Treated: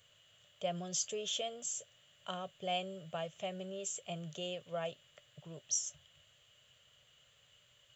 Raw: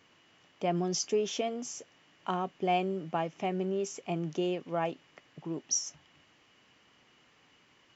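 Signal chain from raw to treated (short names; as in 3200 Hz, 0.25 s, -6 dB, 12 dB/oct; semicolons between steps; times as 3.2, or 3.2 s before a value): EQ curve 120 Hz 0 dB, 300 Hz -26 dB, 590 Hz -1 dB, 850 Hz -18 dB, 1400 Hz -7 dB, 2300 Hz -10 dB, 3300 Hz +4 dB, 5400 Hz -10 dB, 8000 Hz +11 dB, 11000 Hz +8 dB; gain +1 dB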